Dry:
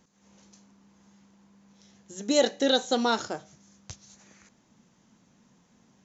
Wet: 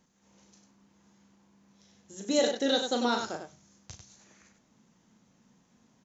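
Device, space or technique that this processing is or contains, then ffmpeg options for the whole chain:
slapback doubling: -filter_complex "[0:a]asplit=3[s0][s1][s2];[s1]adelay=37,volume=0.473[s3];[s2]adelay=97,volume=0.473[s4];[s0][s3][s4]amix=inputs=3:normalize=0,volume=0.596"

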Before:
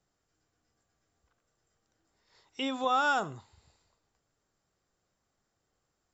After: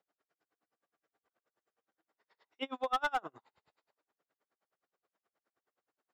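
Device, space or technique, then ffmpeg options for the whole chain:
helicopter radio: -af "highpass=370,lowpass=2600,aeval=exprs='val(0)*pow(10,-35*(0.5-0.5*cos(2*PI*9.5*n/s))/20)':c=same,asoftclip=type=hard:threshold=0.0376,volume=1.5"

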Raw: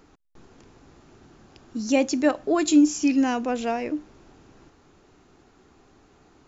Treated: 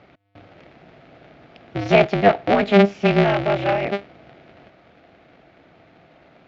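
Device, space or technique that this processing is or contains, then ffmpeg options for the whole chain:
ring modulator pedal into a guitar cabinet: -filter_complex "[0:a]asettb=1/sr,asplit=3[s0][s1][s2];[s0]atrim=end=2.004[s3];[s1]atrim=start=2:end=3.69,asetpts=PTS-STARTPTS,afade=t=in:d=0.004:c=qsin,afade=t=out:st=1.686:d=0.004:c=qsin,acrossover=split=3200[s4][s5];[s5]acompressor=threshold=0.00891:ratio=4:attack=1:release=60[s6];[s4][s6]amix=inputs=2:normalize=0[s7];[s2]atrim=start=3.686[s8];[s3][s7]acrossfade=d=0.004:c1=hsin:c2=qsin[s9];[s9][s8]acrossfade=d=0.004:c1=qsin:c2=hsin,aeval=exprs='val(0)*sgn(sin(2*PI*100*n/s))':c=same,highpass=84,equalizer=f=91:t=q:w=4:g=-5,equalizer=f=210:t=q:w=4:g=-4,equalizer=f=430:t=q:w=4:g=-5,equalizer=f=670:t=q:w=4:g=8,equalizer=f=1000:t=q:w=4:g=-8,equalizer=f=2200:t=q:w=4:g=5,lowpass=f=3800:w=0.5412,lowpass=f=3800:w=1.3066,volume=1.88"

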